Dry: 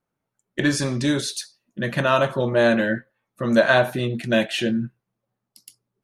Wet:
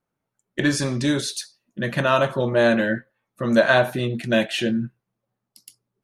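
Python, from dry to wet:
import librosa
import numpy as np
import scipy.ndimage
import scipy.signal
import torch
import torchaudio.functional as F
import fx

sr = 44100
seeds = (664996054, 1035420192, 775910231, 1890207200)

y = x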